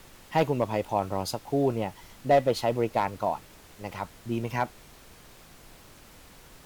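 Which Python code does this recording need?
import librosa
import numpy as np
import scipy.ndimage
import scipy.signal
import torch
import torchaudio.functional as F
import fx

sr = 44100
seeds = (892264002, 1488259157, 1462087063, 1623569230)

y = fx.fix_declip(x, sr, threshold_db=-14.0)
y = fx.noise_reduce(y, sr, print_start_s=5.13, print_end_s=5.63, reduce_db=21.0)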